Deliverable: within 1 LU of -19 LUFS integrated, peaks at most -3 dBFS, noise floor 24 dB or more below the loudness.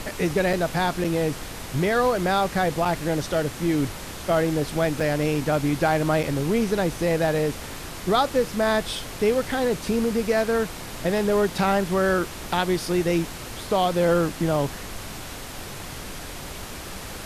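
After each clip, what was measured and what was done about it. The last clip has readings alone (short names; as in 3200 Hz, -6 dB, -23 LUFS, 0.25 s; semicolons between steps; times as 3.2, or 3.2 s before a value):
dropouts 5; longest dropout 4.9 ms; noise floor -36 dBFS; noise floor target -48 dBFS; loudness -23.5 LUFS; peak -8.5 dBFS; loudness target -19.0 LUFS
-> interpolate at 0.53/1.04/2.85/5/6.23, 4.9 ms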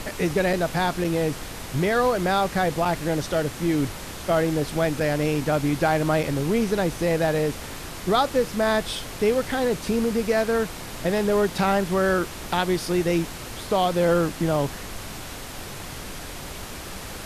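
dropouts 0; noise floor -36 dBFS; noise floor target -48 dBFS
-> noise print and reduce 12 dB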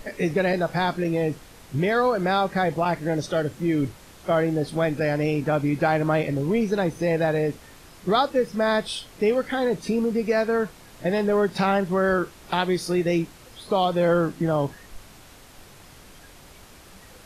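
noise floor -48 dBFS; loudness -24.0 LUFS; peak -9.0 dBFS; loudness target -19.0 LUFS
-> gain +5 dB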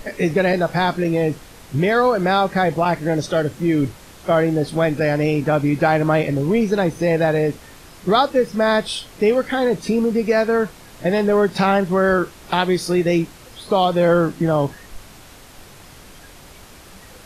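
loudness -19.0 LUFS; peak -4.0 dBFS; noise floor -43 dBFS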